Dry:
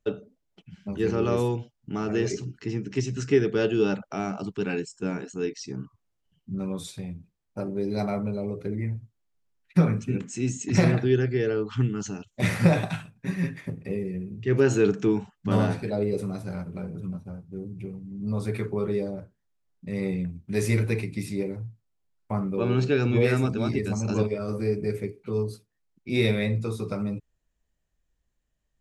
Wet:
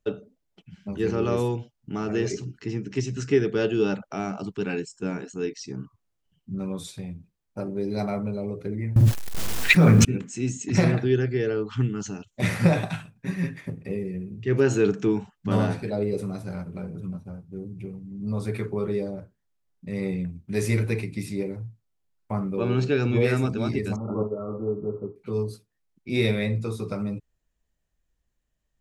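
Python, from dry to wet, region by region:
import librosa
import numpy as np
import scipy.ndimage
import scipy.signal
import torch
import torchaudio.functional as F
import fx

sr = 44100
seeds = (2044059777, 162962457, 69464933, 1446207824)

y = fx.chain(x, sr, fx.law_mismatch(coded='mu'),
    fx.env_flatten(amount_pct=100), at=(8.96, 10.05))
y = fx.chain(y, sr, fx.cvsd(bps=32000),
    fx.brickwall_lowpass(high_hz=1400.0),
    fx.low_shelf(hz=130.0, db=-9.0), at=(23.96, 25.16))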